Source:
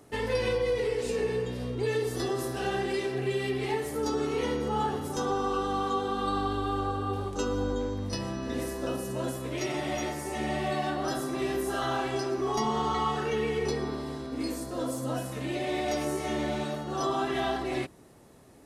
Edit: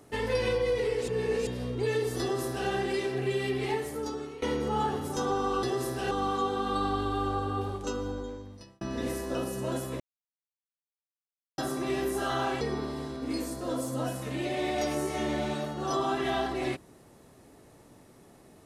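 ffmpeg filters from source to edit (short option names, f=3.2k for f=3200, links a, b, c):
-filter_complex "[0:a]asplit=10[a][b][c][d][e][f][g][h][i][j];[a]atrim=end=1.082[k];[b]atrim=start=1.078:end=1.472,asetpts=PTS-STARTPTS,areverse[l];[c]atrim=start=1.468:end=4.42,asetpts=PTS-STARTPTS,afade=t=out:st=2.232:d=0.72:silence=0.141254[m];[d]atrim=start=4.42:end=5.632,asetpts=PTS-STARTPTS,afade=t=in:d=0.004:c=hsin:silence=0.141254[n];[e]atrim=start=2.208:end=2.692[o];[f]atrim=start=5.628:end=8.33,asetpts=PTS-STARTPTS,afade=t=out:st=1.422:d=1.28[p];[g]atrim=start=8.33:end=9.52,asetpts=PTS-STARTPTS,afade=t=in:d=0.004:c=hsin,afade=t=out:st=1.186:d=0.004:c=hsin[q];[h]atrim=start=9.52:end=11.1,asetpts=PTS-STARTPTS,volume=0[r];[i]atrim=start=11.1:end=12.132,asetpts=PTS-STARTPTS,afade=t=in:d=0.004:c=hsin[s];[j]atrim=start=13.708[t];[k][l]acrossfade=d=0.004:c1=hsin:c2=hsin[u];[m][n]concat=n=2:v=0:a=1[v];[u][v]acrossfade=d=0.004:c1=hsin:c2=hsin[w];[w][o]acrossfade=d=0.004:c1=hsin:c2=hsin[x];[p][q][r][s]concat=n=4:v=0:a=1[y];[x][y]acrossfade=d=0.004:c1=hsin:c2=hsin[z];[z][t]acrossfade=d=0.004:c1=hsin:c2=hsin"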